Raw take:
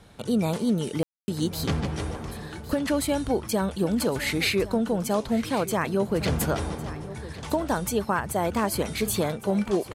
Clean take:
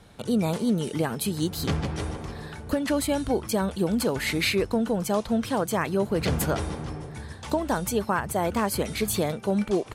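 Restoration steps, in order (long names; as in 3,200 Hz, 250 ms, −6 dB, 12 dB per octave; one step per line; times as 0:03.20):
ambience match 0:01.03–0:01.28
echo removal 1,106 ms −16 dB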